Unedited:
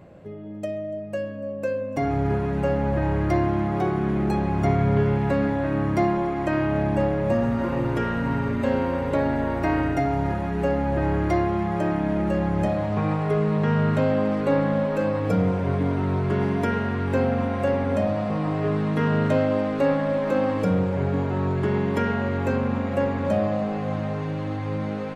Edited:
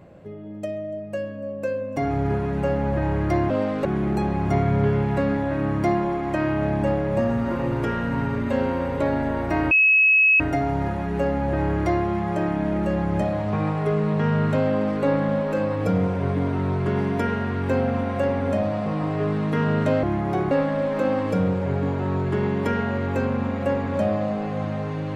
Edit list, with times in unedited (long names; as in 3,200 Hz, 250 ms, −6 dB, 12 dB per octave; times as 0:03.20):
0:03.50–0:03.98: swap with 0:19.47–0:19.82
0:09.84: insert tone 2,570 Hz −13 dBFS 0.69 s